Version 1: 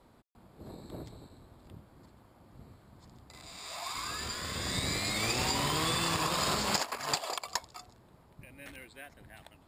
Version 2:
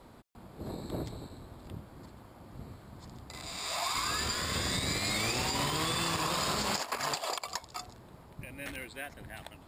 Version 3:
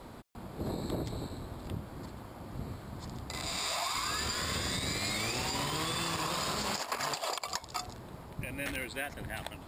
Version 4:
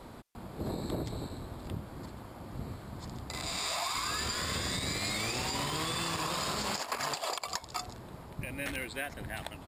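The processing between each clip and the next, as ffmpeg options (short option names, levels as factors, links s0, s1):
-af "alimiter=level_in=1.68:limit=0.0631:level=0:latency=1:release=219,volume=0.596,volume=2.24"
-af "acompressor=threshold=0.0141:ratio=6,volume=2"
-af "aresample=32000,aresample=44100"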